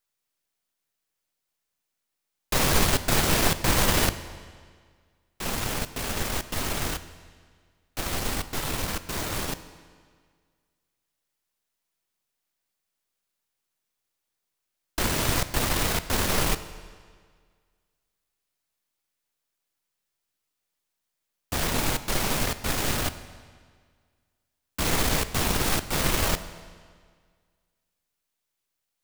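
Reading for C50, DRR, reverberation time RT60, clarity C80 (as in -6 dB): 13.5 dB, 12.0 dB, 1.8 s, 14.5 dB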